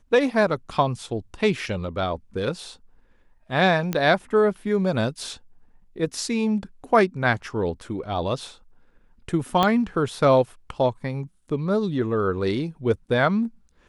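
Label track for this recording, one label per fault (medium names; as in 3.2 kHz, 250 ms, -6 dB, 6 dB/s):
3.930000	3.930000	pop -11 dBFS
9.630000	9.630000	pop -7 dBFS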